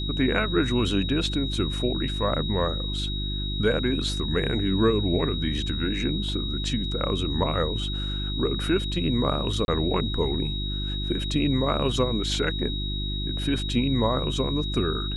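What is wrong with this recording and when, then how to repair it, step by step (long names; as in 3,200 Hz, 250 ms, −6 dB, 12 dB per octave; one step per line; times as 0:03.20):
mains hum 50 Hz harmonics 7 −30 dBFS
whistle 3,800 Hz −32 dBFS
0:09.65–0:09.68: drop-out 31 ms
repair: notch filter 3,800 Hz, Q 30
hum removal 50 Hz, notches 7
repair the gap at 0:09.65, 31 ms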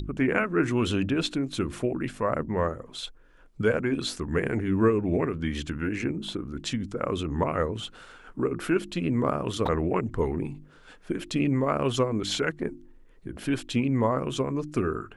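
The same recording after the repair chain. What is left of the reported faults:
none of them is left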